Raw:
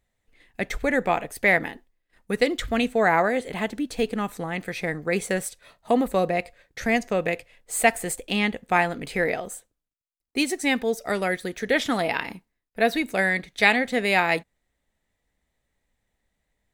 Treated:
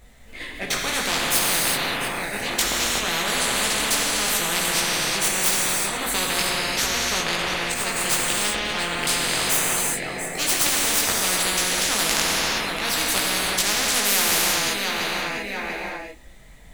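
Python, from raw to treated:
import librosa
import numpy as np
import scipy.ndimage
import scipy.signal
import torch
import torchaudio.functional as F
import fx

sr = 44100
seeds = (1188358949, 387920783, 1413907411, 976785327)

y = fx.tracing_dist(x, sr, depth_ms=0.091)
y = fx.high_shelf(y, sr, hz=5100.0, db=-12.0, at=(6.92, 9.02))
y = fx.auto_swell(y, sr, attack_ms=324.0)
y = fx.chorus_voices(y, sr, voices=6, hz=0.14, base_ms=19, depth_ms=4.8, mix_pct=50)
y = fx.echo_feedback(y, sr, ms=690, feedback_pct=20, wet_db=-18.0)
y = fx.rev_gated(y, sr, seeds[0], gate_ms=400, shape='flat', drr_db=-1.0)
y = fx.spectral_comp(y, sr, ratio=10.0)
y = F.gain(torch.from_numpy(y), 7.0).numpy()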